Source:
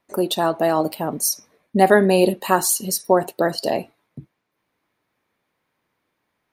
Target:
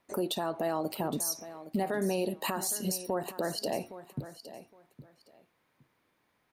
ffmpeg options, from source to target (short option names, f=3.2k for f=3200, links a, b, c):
-af "acompressor=threshold=-25dB:ratio=6,alimiter=limit=-22dB:level=0:latency=1:release=51,aecho=1:1:814|1628:0.2|0.0399"